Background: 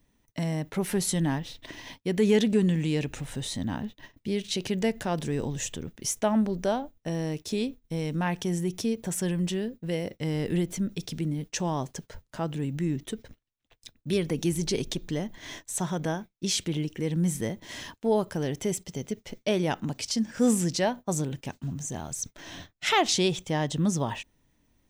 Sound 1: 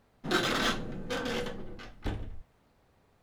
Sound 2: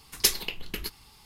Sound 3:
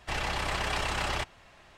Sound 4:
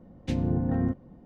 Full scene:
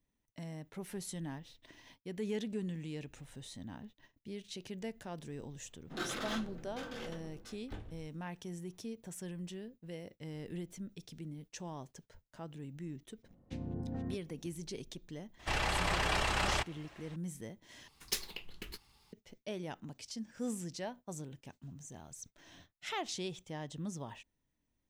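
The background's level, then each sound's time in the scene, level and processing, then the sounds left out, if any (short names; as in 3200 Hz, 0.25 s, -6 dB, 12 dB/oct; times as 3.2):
background -15.5 dB
5.66 add 1 -11 dB
13.23 add 4 -14 dB + reverse delay 0.534 s, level -10.5 dB
15.39 add 3 -1.5 dB
17.88 replace with 2 -11.5 dB + median filter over 3 samples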